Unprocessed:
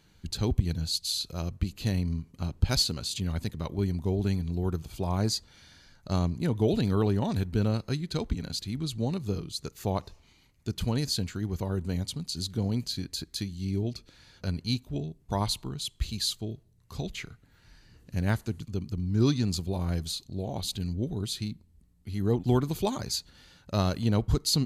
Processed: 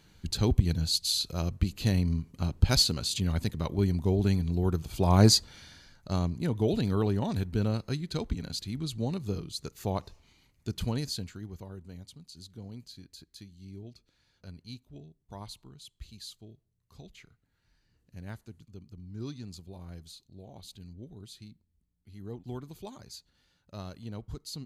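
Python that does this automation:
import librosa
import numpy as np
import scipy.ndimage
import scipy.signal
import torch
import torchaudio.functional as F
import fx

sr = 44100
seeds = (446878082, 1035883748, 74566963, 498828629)

y = fx.gain(x, sr, db=fx.line((4.85, 2.0), (5.26, 9.0), (6.08, -2.0), (10.86, -2.0), (11.84, -15.0)))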